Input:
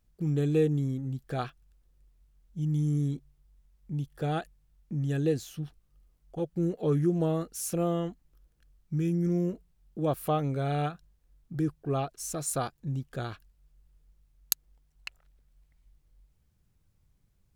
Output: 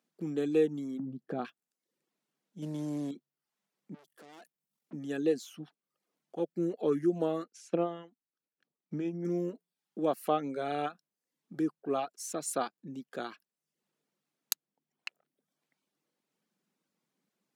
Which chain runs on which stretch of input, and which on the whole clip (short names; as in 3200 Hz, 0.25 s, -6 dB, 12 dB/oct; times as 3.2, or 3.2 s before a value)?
0.99–1.45 HPF 46 Hz 24 dB/oct + tilt -4.5 dB/oct + compressor 2:1, threshold -27 dBFS
2.62–3.11 CVSD 64 kbps + sample leveller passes 1
3.94–4.93 high shelf 8200 Hz +10 dB + tube stage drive 50 dB, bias 0.5
7.44–9.25 transient shaper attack +6 dB, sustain -7 dB + air absorption 110 m + upward expander, over -35 dBFS
whole clip: reverb removal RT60 0.54 s; steep high-pass 200 Hz 36 dB/oct; high shelf 9500 Hz -9 dB